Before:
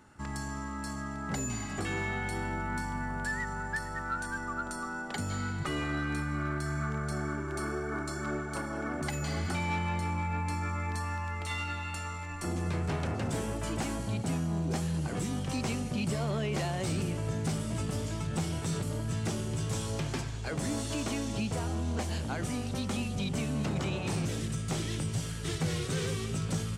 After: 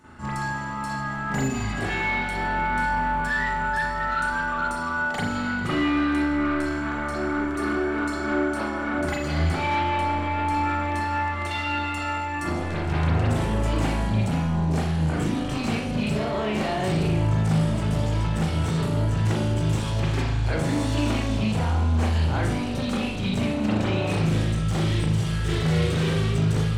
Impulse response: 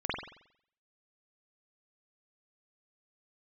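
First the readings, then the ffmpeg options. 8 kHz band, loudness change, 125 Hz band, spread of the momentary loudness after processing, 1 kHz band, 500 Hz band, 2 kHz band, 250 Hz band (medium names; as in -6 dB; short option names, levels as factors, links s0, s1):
-0.5 dB, +9.0 dB, +9.0 dB, 4 LU, +11.0 dB, +8.5 dB, +10.0 dB, +9.0 dB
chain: -filter_complex "[0:a]asoftclip=type=tanh:threshold=0.0282[s0];[1:a]atrim=start_sample=2205,asetrate=52920,aresample=44100[s1];[s0][s1]afir=irnorm=-1:irlink=0,volume=1.88"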